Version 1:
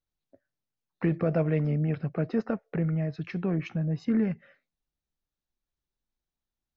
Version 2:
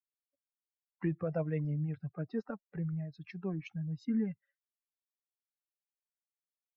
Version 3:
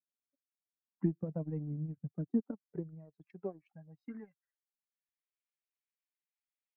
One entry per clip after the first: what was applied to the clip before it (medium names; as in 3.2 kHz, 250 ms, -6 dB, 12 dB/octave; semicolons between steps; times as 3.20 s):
expander on every frequency bin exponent 2; trim -5 dB
band-pass sweep 230 Hz -> 2.2 kHz, 2.24–5.20 s; transient shaper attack +7 dB, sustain -12 dB; trim +2.5 dB